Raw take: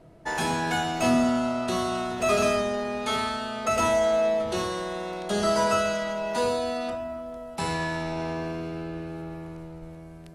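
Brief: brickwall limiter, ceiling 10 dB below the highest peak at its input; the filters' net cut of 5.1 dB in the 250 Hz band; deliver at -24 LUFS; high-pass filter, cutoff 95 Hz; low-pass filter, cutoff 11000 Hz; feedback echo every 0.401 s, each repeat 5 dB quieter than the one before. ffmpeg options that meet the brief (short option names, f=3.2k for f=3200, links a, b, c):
-af "highpass=95,lowpass=11k,equalizer=f=250:t=o:g=-6,alimiter=limit=-22dB:level=0:latency=1,aecho=1:1:401|802|1203|1604|2005|2406|2807:0.562|0.315|0.176|0.0988|0.0553|0.031|0.0173,volume=6dB"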